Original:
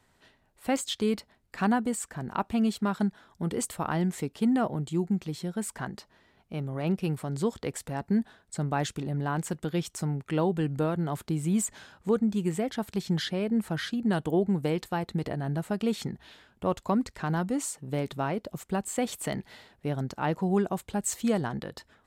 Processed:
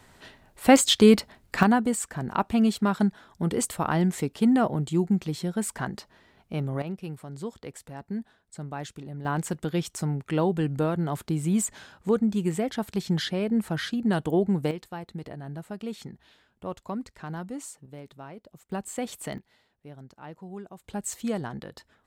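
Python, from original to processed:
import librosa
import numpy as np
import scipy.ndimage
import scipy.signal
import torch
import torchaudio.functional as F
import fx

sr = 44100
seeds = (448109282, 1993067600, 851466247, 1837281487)

y = fx.gain(x, sr, db=fx.steps((0.0, 11.5), (1.63, 4.0), (6.82, -7.0), (9.25, 2.0), (14.71, -7.0), (17.86, -13.0), (18.72, -3.0), (19.38, -14.5), (20.84, -3.0)))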